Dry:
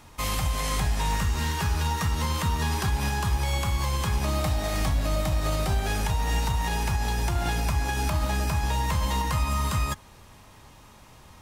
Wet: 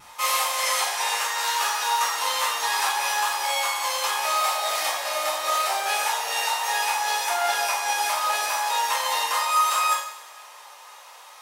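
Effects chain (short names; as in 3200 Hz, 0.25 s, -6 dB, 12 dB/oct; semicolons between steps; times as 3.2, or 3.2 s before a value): HPF 650 Hz 24 dB/oct; vibrato 0.74 Hz 13 cents; two-slope reverb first 0.56 s, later 2.2 s, from -18 dB, DRR -8 dB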